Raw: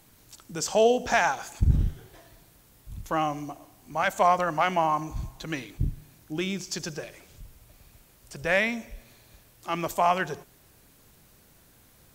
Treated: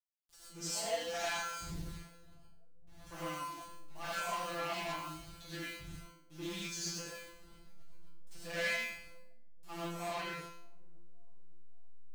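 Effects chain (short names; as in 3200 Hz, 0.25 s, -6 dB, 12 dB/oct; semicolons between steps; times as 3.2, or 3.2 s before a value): level-crossing sampler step -39.5 dBFS; high shelf 5600 Hz -3.5 dB, from 9.73 s -11.5 dB; resonator 170 Hz, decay 0.57 s, harmonics all, mix 100%; soft clip -39 dBFS, distortion -9 dB; high shelf 2000 Hz +11.5 dB; dark delay 0.563 s, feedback 48%, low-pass 430 Hz, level -21.5 dB; non-linear reverb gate 0.14 s rising, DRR -7.5 dB; Doppler distortion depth 0.18 ms; gain -4 dB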